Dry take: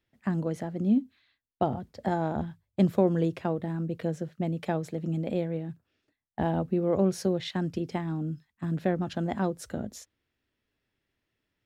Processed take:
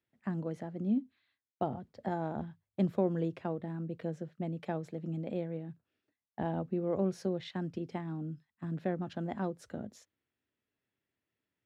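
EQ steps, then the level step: high-pass 100 Hz; low-pass 3.3 kHz 6 dB/octave; -6.5 dB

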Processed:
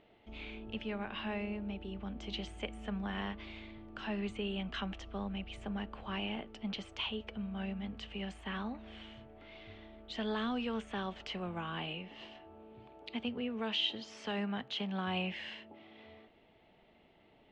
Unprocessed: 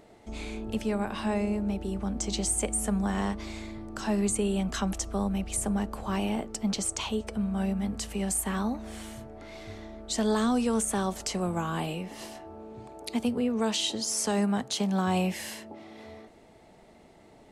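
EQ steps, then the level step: dynamic bell 1.7 kHz, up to +4 dB, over -46 dBFS, Q 1.5; four-pole ladder low-pass 3.4 kHz, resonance 60%; 0.0 dB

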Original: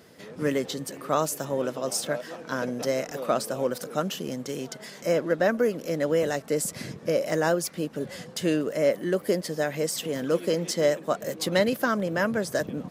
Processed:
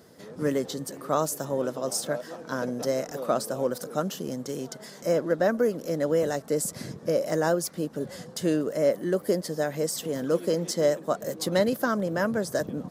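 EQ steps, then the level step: peaking EQ 2.5 kHz -8.5 dB 0.96 oct; 0.0 dB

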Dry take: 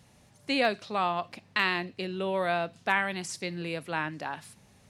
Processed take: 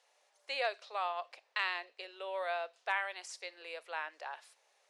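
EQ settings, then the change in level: steep high-pass 480 Hz 36 dB/octave; low-pass 8.1 kHz 12 dB/octave; -7.5 dB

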